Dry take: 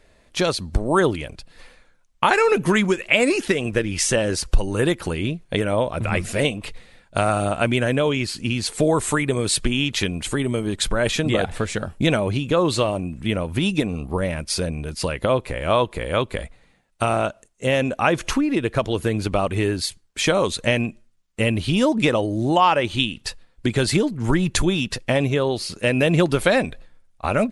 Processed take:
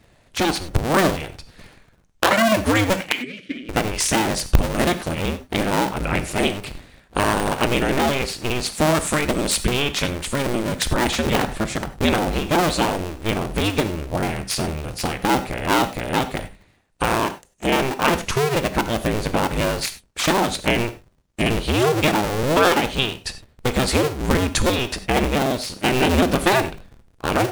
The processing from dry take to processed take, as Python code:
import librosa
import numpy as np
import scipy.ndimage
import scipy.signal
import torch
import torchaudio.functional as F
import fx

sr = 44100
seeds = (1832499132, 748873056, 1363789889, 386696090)

y = fx.cycle_switch(x, sr, every=2, mode='inverted')
y = fx.vowel_filter(y, sr, vowel='i', at=(3.12, 3.69))
y = fx.rev_gated(y, sr, seeds[0], gate_ms=120, shape='flat', drr_db=10.5)